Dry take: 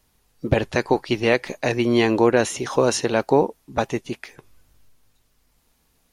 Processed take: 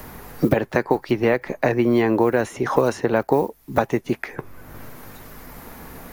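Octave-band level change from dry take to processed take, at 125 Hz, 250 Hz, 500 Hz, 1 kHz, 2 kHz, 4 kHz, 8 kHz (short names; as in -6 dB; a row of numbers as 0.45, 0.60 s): +0.5, +1.5, 0.0, +0.5, -1.0, -9.0, -10.0 dB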